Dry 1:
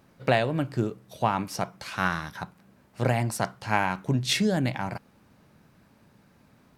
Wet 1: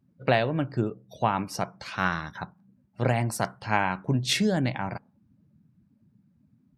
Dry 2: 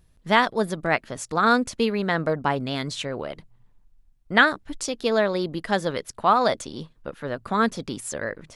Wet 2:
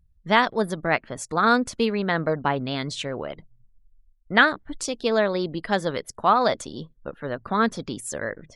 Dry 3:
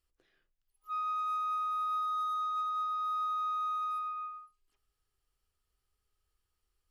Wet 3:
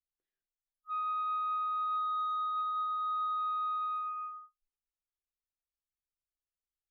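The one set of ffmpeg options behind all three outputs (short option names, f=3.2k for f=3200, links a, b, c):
-af "afftdn=nr=24:nf=-49"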